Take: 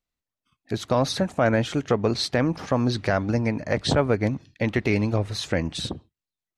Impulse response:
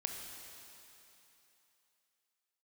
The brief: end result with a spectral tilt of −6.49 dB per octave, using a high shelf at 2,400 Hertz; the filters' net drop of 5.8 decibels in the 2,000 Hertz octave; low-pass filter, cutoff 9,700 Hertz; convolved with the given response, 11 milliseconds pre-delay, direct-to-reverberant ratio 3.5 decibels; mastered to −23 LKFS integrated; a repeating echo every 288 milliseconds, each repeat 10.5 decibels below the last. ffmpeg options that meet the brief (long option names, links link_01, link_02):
-filter_complex "[0:a]lowpass=9700,equalizer=frequency=2000:width_type=o:gain=-3.5,highshelf=frequency=2400:gain=-8.5,aecho=1:1:288|576|864:0.299|0.0896|0.0269,asplit=2[link_01][link_02];[1:a]atrim=start_sample=2205,adelay=11[link_03];[link_02][link_03]afir=irnorm=-1:irlink=0,volume=-4dB[link_04];[link_01][link_04]amix=inputs=2:normalize=0,volume=1dB"